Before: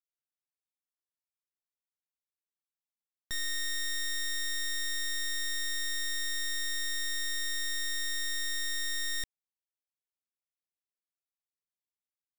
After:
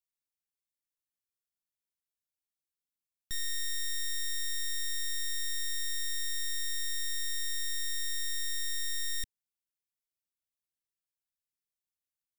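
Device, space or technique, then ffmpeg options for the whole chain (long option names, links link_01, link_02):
smiley-face EQ: -af "lowshelf=frequency=180:gain=6.5,equalizer=frequency=780:width_type=o:width=1.6:gain=-8.5,highshelf=frequency=5500:gain=6,volume=-4dB"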